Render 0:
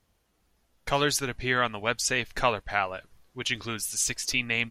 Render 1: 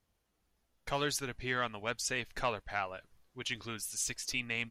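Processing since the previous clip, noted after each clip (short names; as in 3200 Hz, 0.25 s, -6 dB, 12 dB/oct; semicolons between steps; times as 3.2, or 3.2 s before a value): soft clip -10.5 dBFS, distortion -24 dB; gain -8 dB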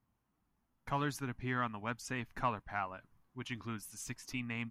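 graphic EQ 125/250/500/1000/4000/8000 Hz +8/+9/-6/+9/-7/-5 dB; gain -5.5 dB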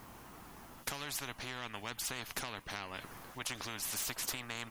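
compressor 5:1, threshold -46 dBFS, peak gain reduction 16 dB; spectral compressor 4:1; gain +11.5 dB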